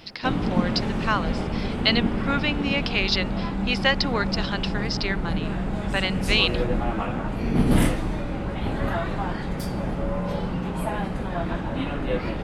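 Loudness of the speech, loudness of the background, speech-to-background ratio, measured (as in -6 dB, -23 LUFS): -25.5 LUFS, -27.0 LUFS, 1.5 dB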